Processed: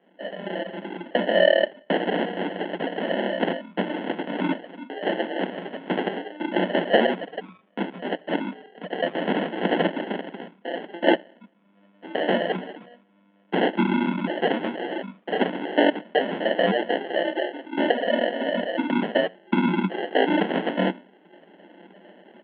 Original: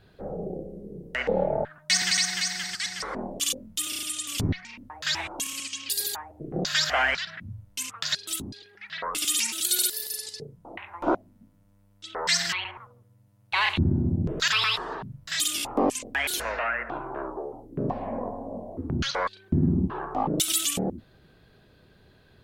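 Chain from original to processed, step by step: bell 550 Hz +6.5 dB 1.2 oct; in parallel at +2 dB: compressor, threshold -34 dBFS, peak gain reduction 18 dB; on the sum: two-slope reverb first 0.62 s, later 1.7 s, from -27 dB, DRR 9 dB; reverb removal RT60 0.76 s; flange 0.12 Hz, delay 0.9 ms, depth 6.4 ms, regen -54%; AGC gain up to 13 dB; fixed phaser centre 670 Hz, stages 8; sample-rate reducer 1200 Hz, jitter 0%; Chebyshev band-pass 180–3300 Hz, order 5; gain -2 dB

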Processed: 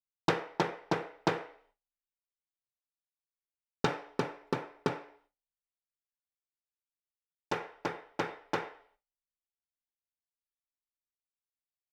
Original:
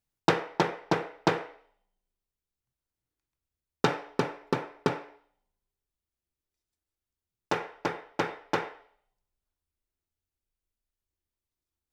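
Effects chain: gate with hold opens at -54 dBFS; gain -4.5 dB

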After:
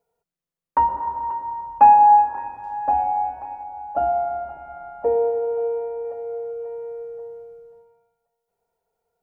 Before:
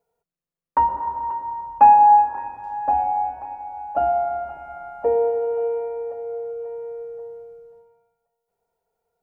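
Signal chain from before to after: 3.63–6.05 high shelf 2200 Hz -9 dB

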